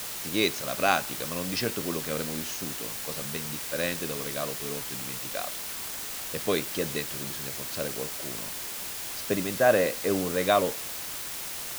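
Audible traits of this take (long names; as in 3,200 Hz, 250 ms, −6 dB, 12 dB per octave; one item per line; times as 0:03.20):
a quantiser's noise floor 6 bits, dither triangular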